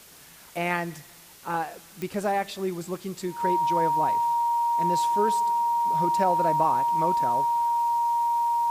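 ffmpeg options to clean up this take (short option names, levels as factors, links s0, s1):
-af "adeclick=t=4,bandreject=f=940:w=30,afwtdn=0.0035"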